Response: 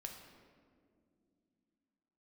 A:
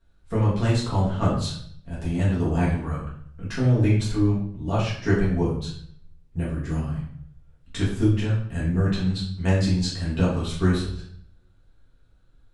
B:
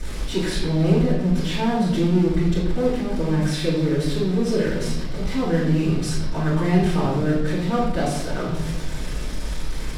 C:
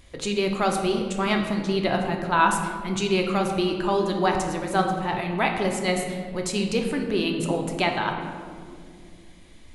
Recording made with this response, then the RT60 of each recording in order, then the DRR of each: C; 0.60, 0.95, 2.3 seconds; −7.5, −12.0, 2.0 decibels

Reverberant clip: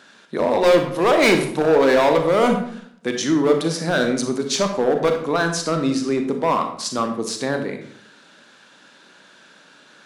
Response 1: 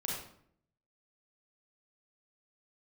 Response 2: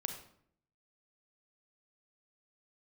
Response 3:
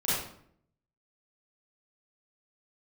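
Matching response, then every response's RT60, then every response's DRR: 2; 0.65, 0.65, 0.65 seconds; −4.0, 5.0, −11.0 decibels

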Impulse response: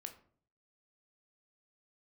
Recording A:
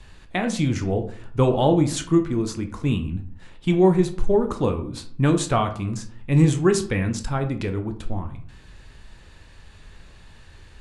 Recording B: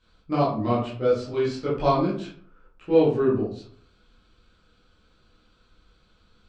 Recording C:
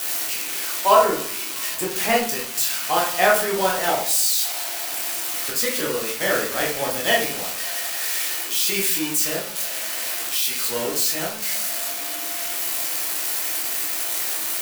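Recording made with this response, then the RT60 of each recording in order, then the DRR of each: A; 0.50, 0.50, 0.50 seconds; 6.0, −9.0, −3.5 decibels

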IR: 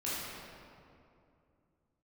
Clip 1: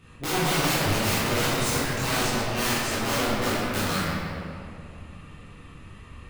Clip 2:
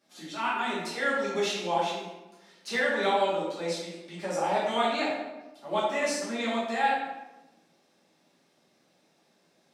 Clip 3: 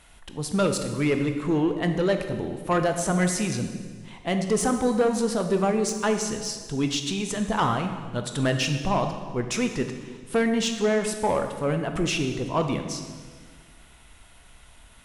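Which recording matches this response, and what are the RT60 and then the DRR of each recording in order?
1; 2.6, 1.1, 1.6 seconds; −10.0, −10.5, 6.0 decibels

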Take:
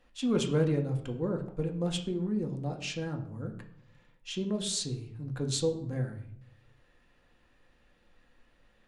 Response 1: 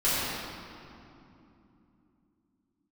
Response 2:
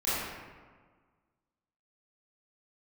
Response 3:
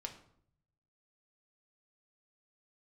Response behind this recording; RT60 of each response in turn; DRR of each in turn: 3; 2.9, 1.5, 0.65 seconds; −13.0, −13.0, 2.5 decibels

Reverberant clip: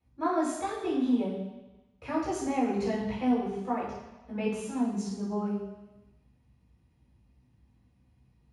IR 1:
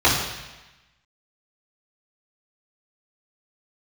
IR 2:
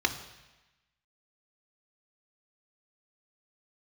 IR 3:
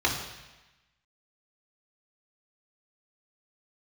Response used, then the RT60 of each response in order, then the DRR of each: 1; 1.1, 1.1, 1.1 seconds; −10.5, 6.5, −2.5 decibels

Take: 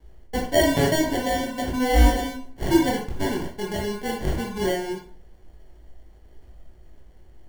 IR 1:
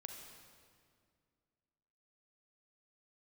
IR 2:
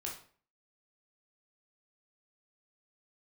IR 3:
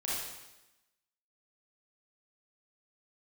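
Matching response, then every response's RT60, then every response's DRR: 2; 2.1, 0.45, 1.0 seconds; 3.0, −2.5, −7.5 decibels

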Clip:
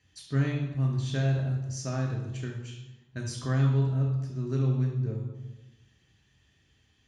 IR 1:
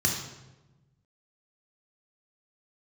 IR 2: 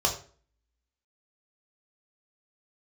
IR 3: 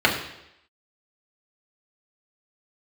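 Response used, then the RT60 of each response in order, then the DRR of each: 1; 1.1, 0.45, 0.80 seconds; −1.0, −0.5, −2.5 decibels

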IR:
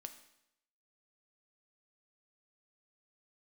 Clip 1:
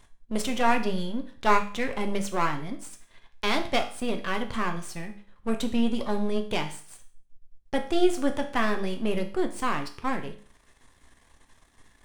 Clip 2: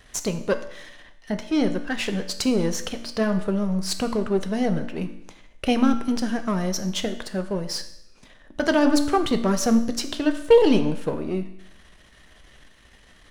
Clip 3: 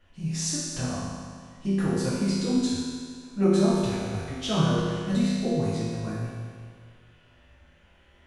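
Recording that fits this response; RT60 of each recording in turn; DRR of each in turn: 2; 0.45, 0.80, 1.9 seconds; 5.0, 7.5, −10.0 decibels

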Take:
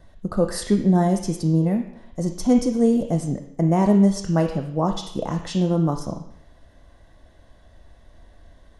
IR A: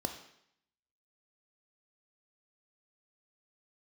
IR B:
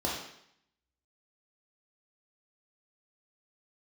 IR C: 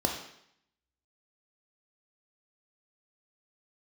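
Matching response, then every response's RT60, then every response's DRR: A; 0.70, 0.70, 0.70 seconds; 5.5, −5.0, 1.5 decibels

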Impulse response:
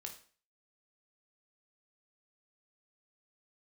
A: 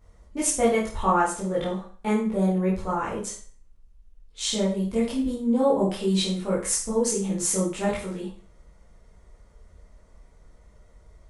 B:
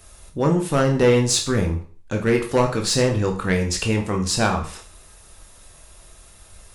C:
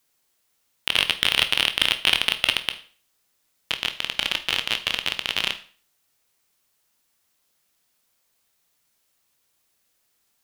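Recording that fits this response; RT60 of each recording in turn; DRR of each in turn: B; 0.40, 0.40, 0.40 seconds; −7.5, 2.5, 8.0 decibels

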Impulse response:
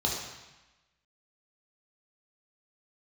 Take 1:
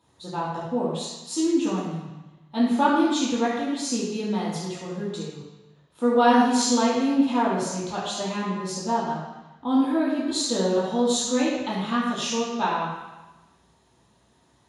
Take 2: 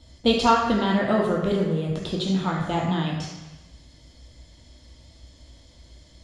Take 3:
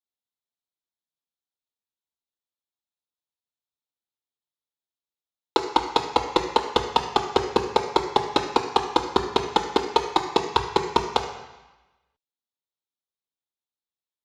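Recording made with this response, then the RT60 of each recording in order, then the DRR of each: 2; 1.1, 1.1, 1.1 seconds; −8.5, −3.0, 3.5 decibels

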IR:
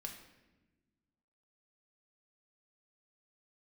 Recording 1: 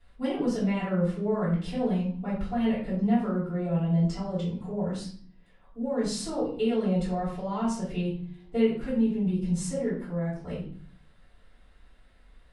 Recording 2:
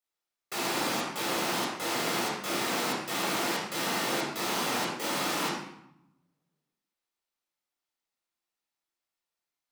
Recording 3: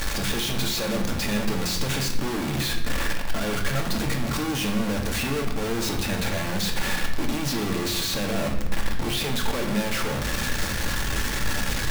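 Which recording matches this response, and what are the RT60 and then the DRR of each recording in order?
3; 0.50, 0.80, 1.2 seconds; −12.0, −5.5, 1.5 decibels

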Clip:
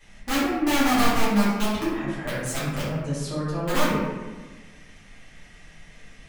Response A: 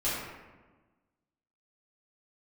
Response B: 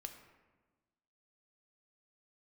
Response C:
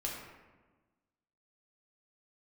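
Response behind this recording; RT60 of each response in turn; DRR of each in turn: A; 1.3, 1.3, 1.3 seconds; −11.5, 5.5, −3.0 decibels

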